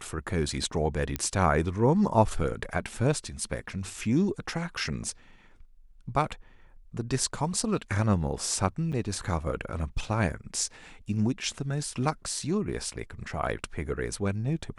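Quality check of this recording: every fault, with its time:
0:01.16: click −13 dBFS
0:08.92–0:08.93: drop-out 6.9 ms

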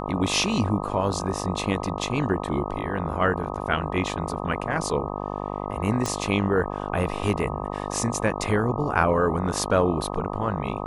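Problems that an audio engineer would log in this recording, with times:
mains buzz 50 Hz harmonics 25 −31 dBFS
0:06.06: click

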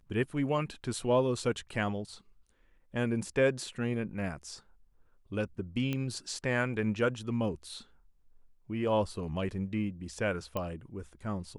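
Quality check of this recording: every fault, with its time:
0:05.93: click −20 dBFS
0:10.57: click −20 dBFS

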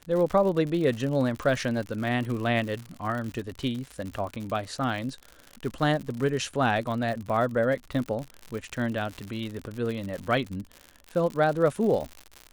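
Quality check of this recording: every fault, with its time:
surface crackle 93 per second −32 dBFS

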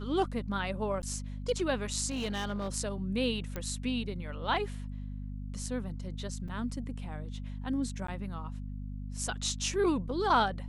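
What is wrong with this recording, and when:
mains hum 50 Hz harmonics 5 −39 dBFS
0:01.02–0:01.03: drop-out 9.7 ms
0:02.10–0:02.76: clipping −29.5 dBFS
0:03.56: click −21 dBFS
0:06.48: drop-out 4.6 ms
0:08.07–0:08.08: drop-out

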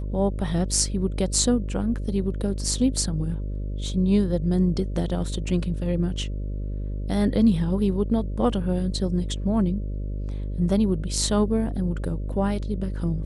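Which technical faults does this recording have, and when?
mains buzz 50 Hz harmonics 12 −29 dBFS

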